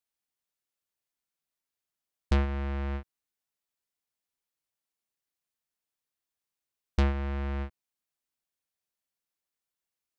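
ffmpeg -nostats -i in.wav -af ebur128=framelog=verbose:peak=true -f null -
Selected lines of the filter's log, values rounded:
Integrated loudness:
  I:         -31.9 LUFS
  Threshold: -42.3 LUFS
Loudness range:
  LRA:         4.8 LU
  Threshold: -57.3 LUFS
  LRA low:   -41.5 LUFS
  LRA high:  -36.7 LUFS
True peak:
  Peak:      -16.6 dBFS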